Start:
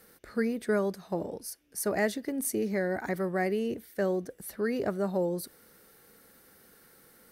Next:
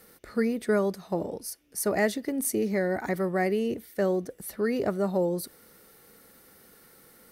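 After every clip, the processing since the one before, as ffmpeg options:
-af "bandreject=f=1600:w=13,volume=1.41"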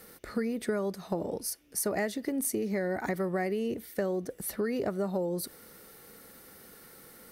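-af "acompressor=threshold=0.0282:ratio=6,volume=1.41"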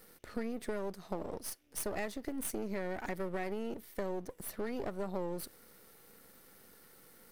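-af "aeval=exprs='if(lt(val(0),0),0.251*val(0),val(0))':c=same,volume=0.631"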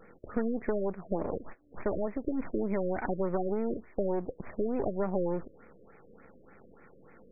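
-af "afftfilt=real='re*lt(b*sr/1024,590*pow(2600/590,0.5+0.5*sin(2*PI*3.4*pts/sr)))':imag='im*lt(b*sr/1024,590*pow(2600/590,0.5+0.5*sin(2*PI*3.4*pts/sr)))':win_size=1024:overlap=0.75,volume=2.37"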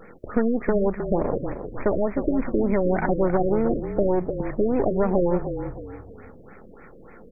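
-filter_complex "[0:a]asplit=5[s0][s1][s2][s3][s4];[s1]adelay=311,afreqshift=-33,volume=0.355[s5];[s2]adelay=622,afreqshift=-66,volume=0.127[s6];[s3]adelay=933,afreqshift=-99,volume=0.0462[s7];[s4]adelay=1244,afreqshift=-132,volume=0.0166[s8];[s0][s5][s6][s7][s8]amix=inputs=5:normalize=0,volume=2.82"

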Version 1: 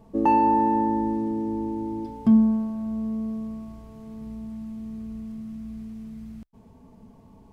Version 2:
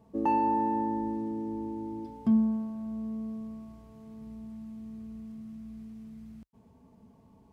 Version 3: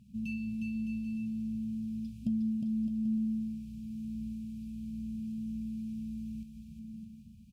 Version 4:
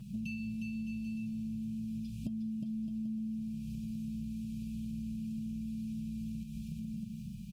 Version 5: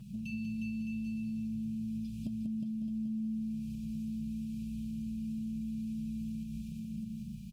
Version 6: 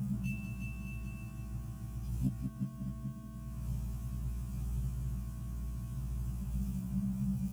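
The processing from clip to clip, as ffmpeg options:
-af "highpass=53,volume=0.447"
-filter_complex "[0:a]afftfilt=real='re*(1-between(b*sr/4096,240,2300))':imag='im*(1-between(b*sr/4096,240,2300))':win_size=4096:overlap=0.75,acompressor=threshold=0.0158:ratio=6,asplit=2[s0][s1];[s1]aecho=0:1:360|612|788.4|911.9|998.3:0.631|0.398|0.251|0.158|0.1[s2];[s0][s2]amix=inputs=2:normalize=0,volume=1.5"
-af "aecho=1:1:6.3:0.69,acompressor=threshold=0.00398:ratio=6,volume=3.55"
-af "aecho=1:1:191:0.501,volume=0.841"
-af "aeval=exprs='val(0)+0.5*0.00282*sgn(val(0))':c=same,equalizer=f=125:t=o:w=1:g=4,equalizer=f=500:t=o:w=1:g=-8,equalizer=f=2000:t=o:w=1:g=-8,equalizer=f=4000:t=o:w=1:g=-12,afftfilt=real='re*1.73*eq(mod(b,3),0)':imag='im*1.73*eq(mod(b,3),0)':win_size=2048:overlap=0.75,volume=2.82"

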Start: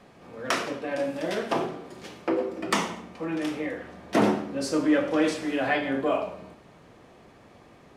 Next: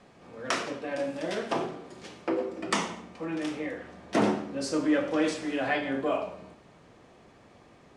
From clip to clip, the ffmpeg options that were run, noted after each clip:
-af "lowpass=f=9300:w=0.5412,lowpass=f=9300:w=1.3066,highshelf=f=7200:g=4.5,volume=0.708"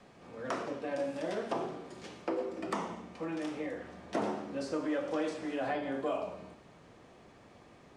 -filter_complex "[0:a]acrossover=split=450|1300|3500[s0][s1][s2][s3];[s0]acompressor=threshold=0.0141:ratio=4[s4];[s1]acompressor=threshold=0.0282:ratio=4[s5];[s2]acompressor=threshold=0.00282:ratio=4[s6];[s3]acompressor=threshold=0.00224:ratio=4[s7];[s4][s5][s6][s7]amix=inputs=4:normalize=0,volume=0.841"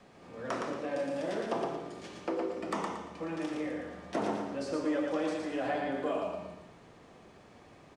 -af "aecho=1:1:115|230|345|460:0.631|0.202|0.0646|0.0207"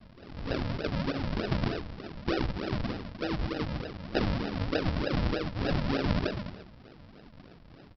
-filter_complex "[0:a]asplit=2[s0][s1];[s1]adelay=15,volume=0.531[s2];[s0][s2]amix=inputs=2:normalize=0,aresample=11025,acrusher=samples=20:mix=1:aa=0.000001:lfo=1:lforange=20:lforate=3.3,aresample=44100,volume=1.41"

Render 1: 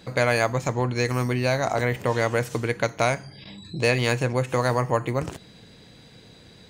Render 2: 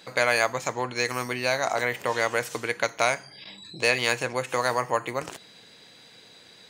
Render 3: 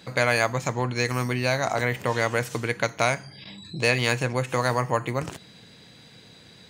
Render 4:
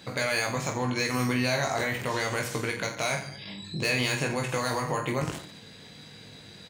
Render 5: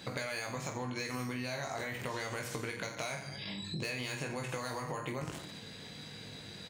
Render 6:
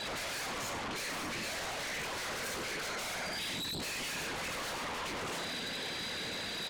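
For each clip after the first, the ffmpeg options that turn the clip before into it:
-af "highpass=f=870:p=1,volume=1.33"
-af "bass=f=250:g=13,treble=f=4000:g=-1"
-filter_complex "[0:a]acrossover=split=3000[s0][s1];[s0]alimiter=limit=0.112:level=0:latency=1:release=39[s2];[s1]asoftclip=type=tanh:threshold=0.0531[s3];[s2][s3]amix=inputs=2:normalize=0,aecho=1:1:20|48|87.2|142.1|218.9:0.631|0.398|0.251|0.158|0.1"
-af "acompressor=threshold=0.0158:ratio=5"
-filter_complex "[0:a]afftfilt=real='hypot(re,im)*cos(2*PI*random(0))':imag='hypot(re,im)*sin(2*PI*random(1))':win_size=512:overlap=0.75,asplit=2[s0][s1];[s1]highpass=f=720:p=1,volume=12.6,asoftclip=type=tanh:threshold=0.0316[s2];[s0][s2]amix=inputs=2:normalize=0,lowpass=f=3100:p=1,volume=0.501,aeval=exprs='0.0316*sin(PI/2*3.16*val(0)/0.0316)':c=same,volume=0.531"

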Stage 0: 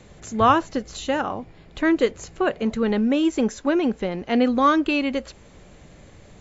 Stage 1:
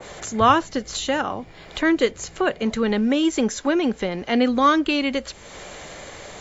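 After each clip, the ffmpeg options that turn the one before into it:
-filter_complex "[0:a]bandreject=f=2600:w=17,acrossover=split=440[s0][s1];[s1]acompressor=mode=upward:threshold=0.0562:ratio=2.5[s2];[s0][s2]amix=inputs=2:normalize=0,adynamicequalizer=threshold=0.0224:dfrequency=1600:dqfactor=0.7:tfrequency=1600:tqfactor=0.7:attack=5:release=100:ratio=0.375:range=2.5:mode=boostabove:tftype=highshelf"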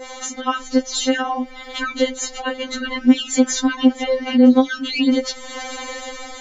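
-af "dynaudnorm=f=370:g=5:m=2.24,alimiter=level_in=4.73:limit=0.891:release=50:level=0:latency=1,afftfilt=real='re*3.46*eq(mod(b,12),0)':imag='im*3.46*eq(mod(b,12),0)':win_size=2048:overlap=0.75,volume=0.447"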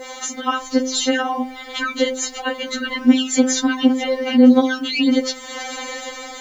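-af "highpass=f=47:p=1,acrusher=bits=8:mix=0:aa=0.5,bandreject=f=129.7:t=h:w=4,bandreject=f=259.4:t=h:w=4,bandreject=f=389.1:t=h:w=4,bandreject=f=518.8:t=h:w=4,bandreject=f=648.5:t=h:w=4,bandreject=f=778.2:t=h:w=4,bandreject=f=907.9:t=h:w=4,bandreject=f=1037.6:t=h:w=4,volume=1.19"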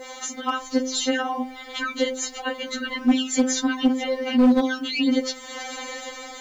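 -af "asoftclip=type=hard:threshold=0.447,volume=0.596"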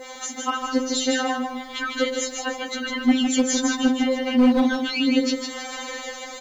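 -af "aecho=1:1:154|308|462|616:0.596|0.173|0.0501|0.0145"

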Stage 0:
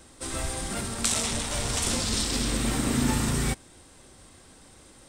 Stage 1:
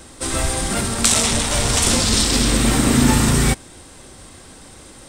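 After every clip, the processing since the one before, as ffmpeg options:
-af "acontrast=52,volume=1.68"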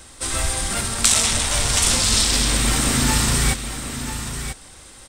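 -af "equalizer=f=280:w=0.43:g=-8.5,aecho=1:1:990:0.335"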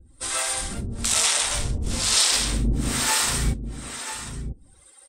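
-filter_complex "[0:a]afftdn=nr=16:nf=-42,acrossover=split=430[s0][s1];[s0]aeval=exprs='val(0)*(1-1/2+1/2*cos(2*PI*1.1*n/s))':c=same[s2];[s1]aeval=exprs='val(0)*(1-1/2-1/2*cos(2*PI*1.1*n/s))':c=same[s3];[s2][s3]amix=inputs=2:normalize=0"

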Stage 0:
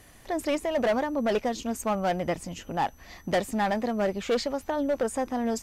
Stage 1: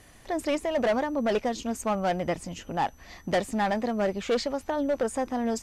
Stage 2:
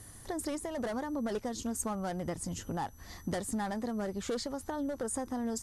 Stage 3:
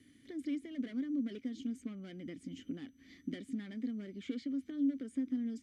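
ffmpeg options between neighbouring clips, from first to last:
-af "lowpass=11000"
-af "acompressor=threshold=0.0251:ratio=3,equalizer=f=100:t=o:w=0.67:g=8,equalizer=f=630:t=o:w=0.67:g=-6,equalizer=f=2500:t=o:w=0.67:g=-11,equalizer=f=10000:t=o:w=0.67:g=11"
-filter_complex "[0:a]asplit=3[s0][s1][s2];[s0]bandpass=f=270:t=q:w=8,volume=1[s3];[s1]bandpass=f=2290:t=q:w=8,volume=0.501[s4];[s2]bandpass=f=3010:t=q:w=8,volume=0.355[s5];[s3][s4][s5]amix=inputs=3:normalize=0,acrossover=split=540|4100[s6][s7][s8];[s8]alimiter=level_in=53.1:limit=0.0631:level=0:latency=1:release=290,volume=0.0188[s9];[s6][s7][s9]amix=inputs=3:normalize=0,volume=2"

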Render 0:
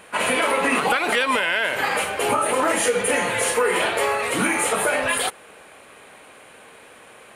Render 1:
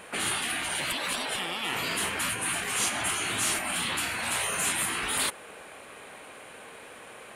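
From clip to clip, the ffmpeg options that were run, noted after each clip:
-af "afftfilt=real='re*lt(hypot(re,im),0.126)':imag='im*lt(hypot(re,im),0.126)':win_size=1024:overlap=0.75"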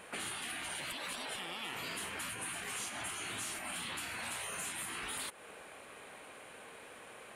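-af "acompressor=threshold=0.0251:ratio=6,volume=0.501"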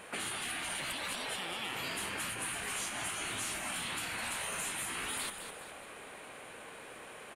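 -filter_complex "[0:a]asplit=6[s0][s1][s2][s3][s4][s5];[s1]adelay=207,afreqshift=-61,volume=0.376[s6];[s2]adelay=414,afreqshift=-122,volume=0.174[s7];[s3]adelay=621,afreqshift=-183,volume=0.0794[s8];[s4]adelay=828,afreqshift=-244,volume=0.0367[s9];[s5]adelay=1035,afreqshift=-305,volume=0.0168[s10];[s0][s6][s7][s8][s9][s10]amix=inputs=6:normalize=0,volume=1.33"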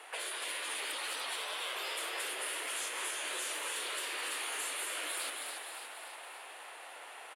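-filter_complex "[0:a]afreqshift=260,asplit=9[s0][s1][s2][s3][s4][s5][s6][s7][s8];[s1]adelay=286,afreqshift=55,volume=0.501[s9];[s2]adelay=572,afreqshift=110,volume=0.292[s10];[s3]adelay=858,afreqshift=165,volume=0.168[s11];[s4]adelay=1144,afreqshift=220,volume=0.0977[s12];[s5]adelay=1430,afreqshift=275,volume=0.0569[s13];[s6]adelay=1716,afreqshift=330,volume=0.0327[s14];[s7]adelay=2002,afreqshift=385,volume=0.0191[s15];[s8]adelay=2288,afreqshift=440,volume=0.0111[s16];[s0][s9][s10][s11][s12][s13][s14][s15][s16]amix=inputs=9:normalize=0,volume=0.841"

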